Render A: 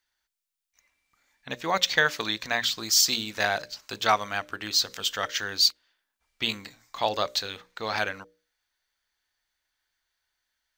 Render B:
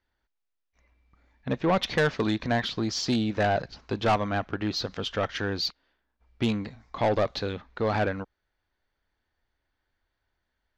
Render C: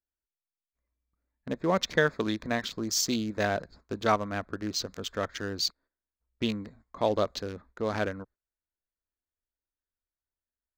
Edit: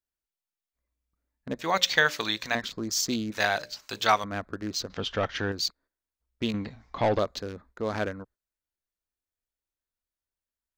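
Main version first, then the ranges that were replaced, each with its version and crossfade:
C
0:01.59–0:02.55: punch in from A
0:03.32–0:04.24: punch in from A
0:04.90–0:05.52: punch in from B
0:06.54–0:07.19: punch in from B

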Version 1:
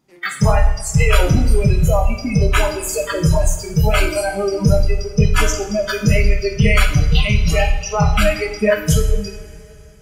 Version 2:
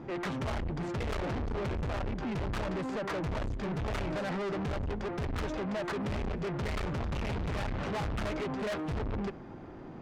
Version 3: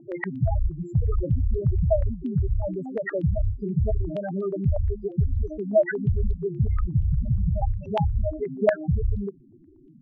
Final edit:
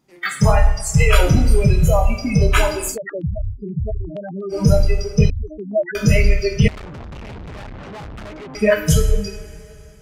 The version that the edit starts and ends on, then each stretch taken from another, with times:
1
0:02.93–0:04.54: punch in from 3, crossfade 0.10 s
0:05.30–0:05.95: punch in from 3
0:06.68–0:08.55: punch in from 2

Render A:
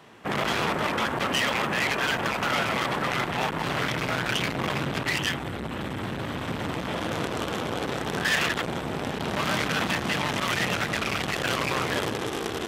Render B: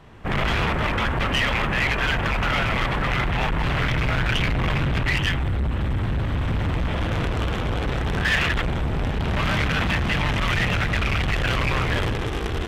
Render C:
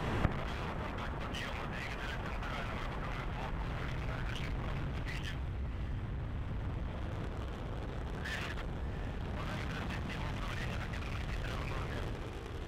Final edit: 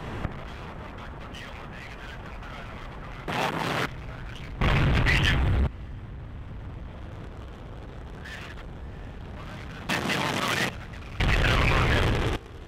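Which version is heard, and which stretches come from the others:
C
0:03.28–0:03.86: punch in from A
0:04.61–0:05.67: punch in from B
0:09.89–0:10.69: punch in from A
0:11.20–0:12.36: punch in from B

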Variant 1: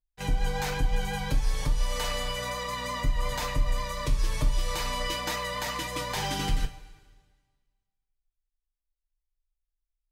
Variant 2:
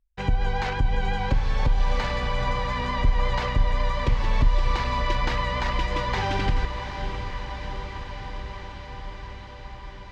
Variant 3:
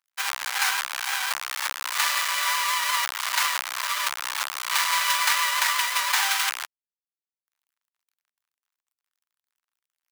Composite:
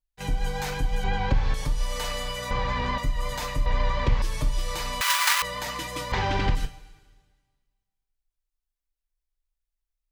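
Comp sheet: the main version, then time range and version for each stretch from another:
1
0:01.04–0:01.54: punch in from 2
0:02.51–0:02.98: punch in from 2
0:03.66–0:04.22: punch in from 2
0:05.01–0:05.42: punch in from 3
0:06.12–0:06.55: punch in from 2

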